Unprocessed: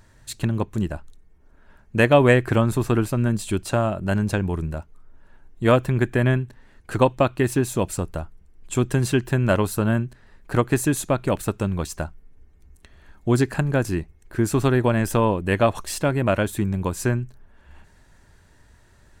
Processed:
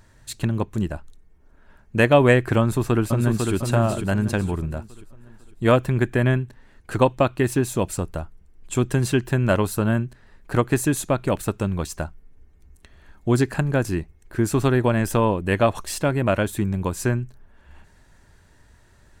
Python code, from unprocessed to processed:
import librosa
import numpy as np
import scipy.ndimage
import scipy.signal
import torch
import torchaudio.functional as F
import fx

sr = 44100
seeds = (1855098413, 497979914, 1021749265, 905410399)

y = fx.echo_throw(x, sr, start_s=2.6, length_s=0.93, ms=500, feedback_pct=40, wet_db=-4.5)